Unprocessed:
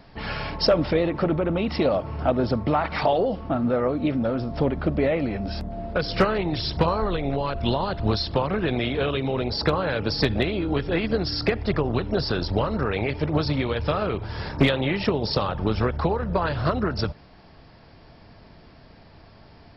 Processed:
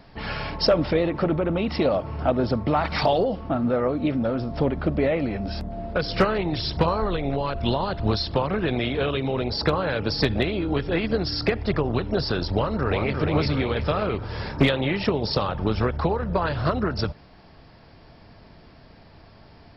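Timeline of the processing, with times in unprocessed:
2.76–3.24 tone controls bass +4 dB, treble +11 dB
12.51–13.19 echo throw 0.35 s, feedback 60%, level -4.5 dB

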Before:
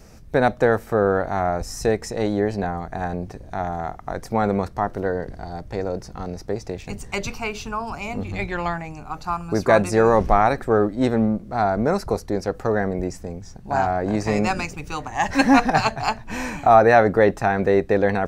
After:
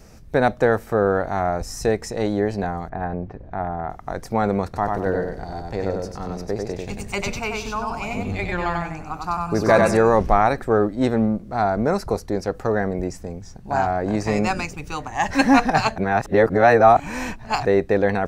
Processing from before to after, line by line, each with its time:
2.89–3.9 LPF 1900 Hz
4.64–9.97 feedback echo 95 ms, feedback 26%, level -3 dB
15.98–17.65 reverse

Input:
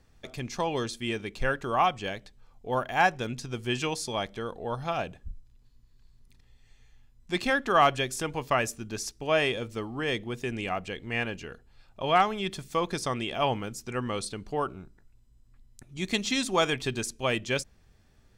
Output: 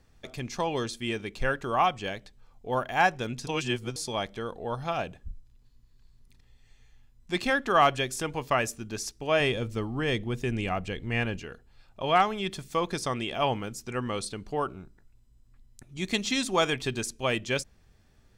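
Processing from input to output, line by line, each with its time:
3.47–3.96 reverse
9.4–11.4 low shelf 170 Hz +10 dB

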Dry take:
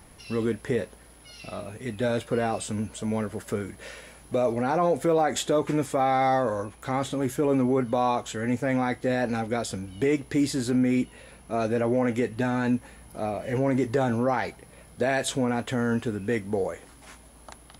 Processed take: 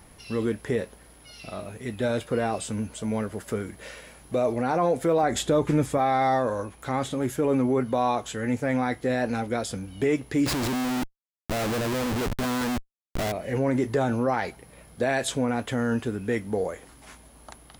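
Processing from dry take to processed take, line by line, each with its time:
5.23–5.98 low shelf 160 Hz +11 dB
10.46–13.32 Schmitt trigger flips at -33.5 dBFS

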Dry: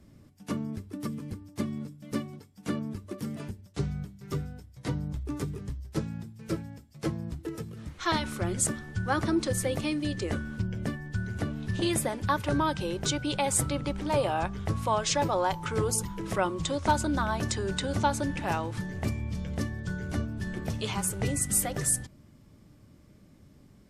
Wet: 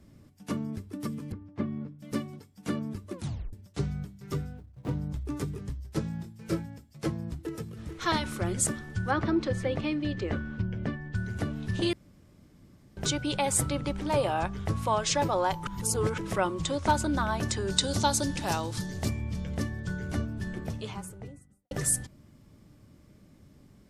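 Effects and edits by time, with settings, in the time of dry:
1.32–1.99 LPF 2000 Hz
3.13 tape stop 0.40 s
4.54–5.02 median filter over 25 samples
6.02–6.66 doubler 24 ms -6 dB
7.34–7.87 echo throw 0.44 s, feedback 40%, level -8.5 dB
9.11–11.15 LPF 3400 Hz
11.93–12.97 room tone
15.67–16.18 reverse
17.7–19.08 resonant high shelf 3200 Hz +8.5 dB, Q 1.5
20.21–21.71 studio fade out

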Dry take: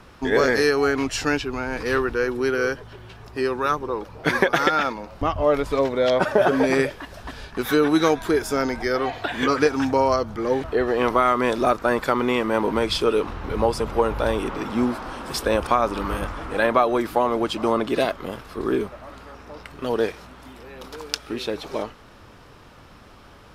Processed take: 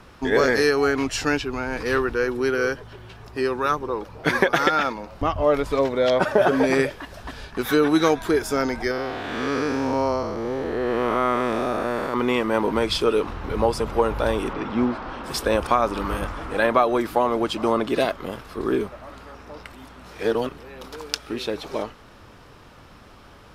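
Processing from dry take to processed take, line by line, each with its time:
8.91–12.14 time blur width 0.272 s
14.53–15.24 LPF 3900 Hz
19.73–20.58 reverse

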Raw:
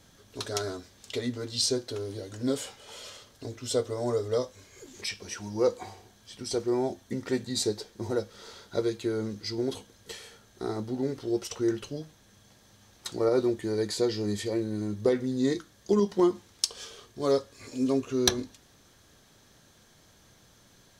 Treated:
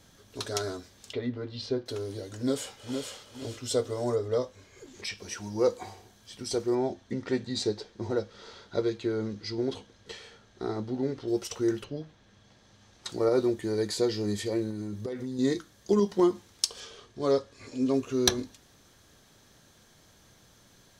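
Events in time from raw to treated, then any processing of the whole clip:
1.13–1.86 air absorption 340 m
2.37–3.12 echo throw 0.46 s, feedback 30%, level -5.5 dB
4.14–5.17 high shelf 4500 Hz -> 8700 Hz -11 dB
6.75–11.28 LPF 5000 Hz
11.83–13.08 LPF 3100 Hz -> 7300 Hz
14.7–15.39 compressor 16:1, threshold -30 dBFS
16.8–17.94 air absorption 57 m

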